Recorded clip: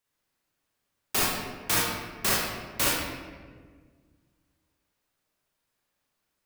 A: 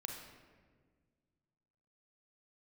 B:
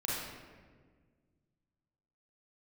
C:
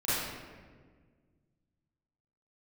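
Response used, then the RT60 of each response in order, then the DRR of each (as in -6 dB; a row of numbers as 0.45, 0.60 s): B; 1.6, 1.6, 1.6 s; 1.5, -6.5, -14.0 dB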